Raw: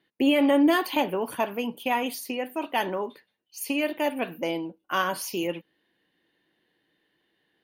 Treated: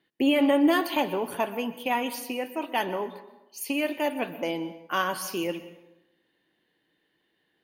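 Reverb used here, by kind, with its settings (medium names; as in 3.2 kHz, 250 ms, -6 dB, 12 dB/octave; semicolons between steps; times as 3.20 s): plate-style reverb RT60 0.96 s, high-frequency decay 0.7×, pre-delay 110 ms, DRR 13.5 dB; trim -1 dB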